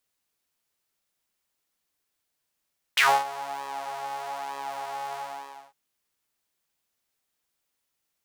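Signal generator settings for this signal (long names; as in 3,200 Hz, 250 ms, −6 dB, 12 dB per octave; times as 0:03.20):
subtractive patch with pulse-width modulation C#3, detune 23 cents, filter highpass, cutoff 800 Hz, Q 5.7, filter decay 0.12 s, filter sustain 0%, attack 7.2 ms, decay 0.26 s, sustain −20.5 dB, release 0.57 s, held 2.19 s, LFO 1.1 Hz, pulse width 39%, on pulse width 20%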